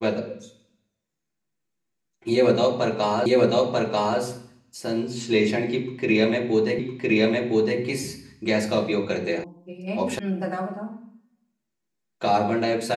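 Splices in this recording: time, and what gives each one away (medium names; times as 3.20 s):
3.26 s: repeat of the last 0.94 s
6.79 s: repeat of the last 1.01 s
9.44 s: sound stops dead
10.19 s: sound stops dead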